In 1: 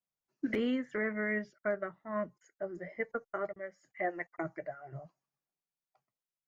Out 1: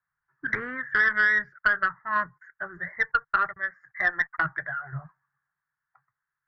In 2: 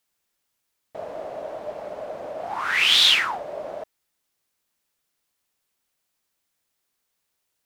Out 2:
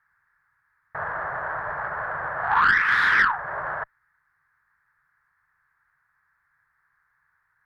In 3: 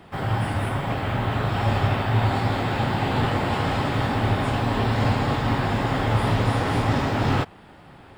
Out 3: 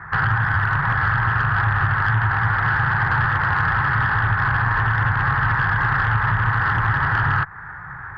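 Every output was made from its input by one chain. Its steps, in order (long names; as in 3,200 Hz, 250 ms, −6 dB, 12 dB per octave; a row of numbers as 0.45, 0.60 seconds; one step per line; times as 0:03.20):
drawn EQ curve 150 Hz 0 dB, 230 Hz −21 dB, 410 Hz −15 dB, 610 Hz −17 dB, 930 Hz +2 dB, 1,700 Hz +14 dB, 2,900 Hz −27 dB, 4,300 Hz −23 dB, 7,000 Hz −27 dB, 11,000 Hz −19 dB
downward compressor 5 to 1, threshold −26 dBFS
harmonic generator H 2 −15 dB, 5 −23 dB, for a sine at −15 dBFS
high-shelf EQ 8,500 Hz −8.5 dB
level +8 dB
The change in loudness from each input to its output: +11.5, −4.5, +4.5 LU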